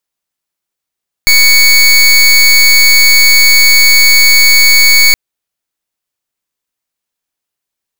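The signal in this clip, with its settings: pulse 2.23 kHz, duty 24% -5 dBFS 3.87 s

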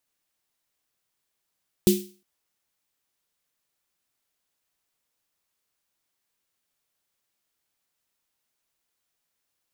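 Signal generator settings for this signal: snare drum length 0.36 s, tones 200 Hz, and 360 Hz, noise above 2.7 kHz, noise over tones -9 dB, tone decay 0.35 s, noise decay 0.39 s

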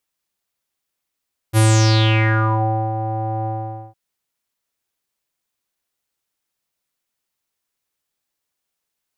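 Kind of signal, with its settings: synth note square A2 12 dB/octave, low-pass 750 Hz, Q 6.4, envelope 4 oct, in 1.11 s, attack 43 ms, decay 1.35 s, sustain -13 dB, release 0.48 s, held 1.93 s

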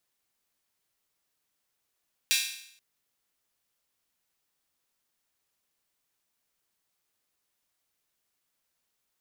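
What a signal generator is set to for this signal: open hi-hat length 0.48 s, high-pass 2.7 kHz, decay 0.69 s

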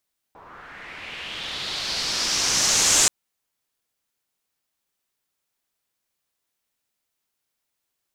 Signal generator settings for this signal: swept filtered noise white, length 2.73 s lowpass, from 850 Hz, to 7.2 kHz, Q 2.9, linear, gain ramp +22 dB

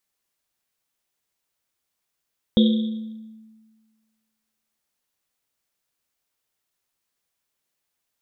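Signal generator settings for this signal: Risset drum length 3.37 s, pitch 220 Hz, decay 1.59 s, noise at 3.5 kHz, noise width 490 Hz, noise 15%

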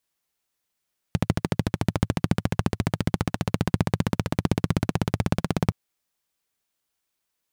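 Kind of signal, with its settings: single-cylinder engine model, changing speed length 4.57 s, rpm 1600, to 2000, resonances 110/160 Hz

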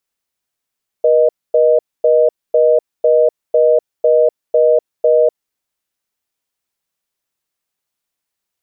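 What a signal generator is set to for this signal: call progress tone reorder tone, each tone -10.5 dBFS 4.40 s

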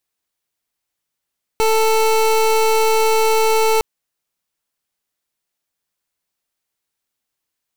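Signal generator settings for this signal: pulse 442 Hz, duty 26% -14.5 dBFS 2.21 s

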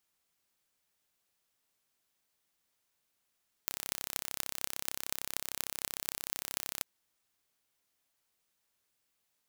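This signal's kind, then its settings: pulse train 33.2 per s, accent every 8, -4 dBFS 3.14 s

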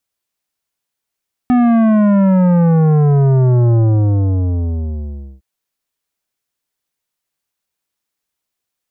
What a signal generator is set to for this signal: sub drop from 250 Hz, over 3.91 s, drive 12 dB, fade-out 1.66 s, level -9.5 dB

